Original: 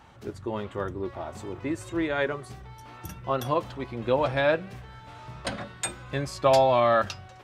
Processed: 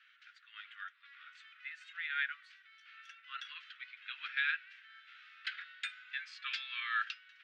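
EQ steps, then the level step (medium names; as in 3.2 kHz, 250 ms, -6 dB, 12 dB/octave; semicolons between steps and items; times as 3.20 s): steep high-pass 1.4 kHz 72 dB/octave; four-pole ladder low-pass 4 kHz, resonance 25%; +2.0 dB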